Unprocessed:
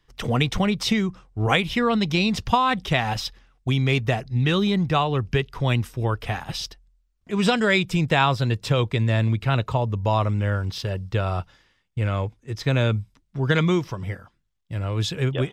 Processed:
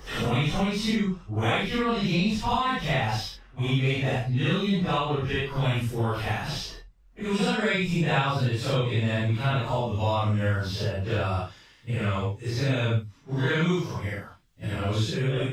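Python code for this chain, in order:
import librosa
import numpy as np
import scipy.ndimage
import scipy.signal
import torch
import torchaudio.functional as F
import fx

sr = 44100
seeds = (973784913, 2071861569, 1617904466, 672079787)

y = fx.phase_scramble(x, sr, seeds[0], window_ms=200)
y = fx.band_squash(y, sr, depth_pct=70)
y = y * 10.0 ** (-3.5 / 20.0)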